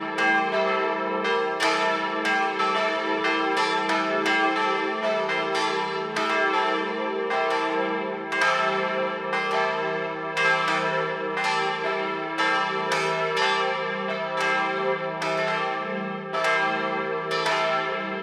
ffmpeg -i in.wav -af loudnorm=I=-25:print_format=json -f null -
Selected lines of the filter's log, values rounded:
"input_i" : "-24.2",
"input_tp" : "-8.2",
"input_lra" : "1.9",
"input_thresh" : "-34.2",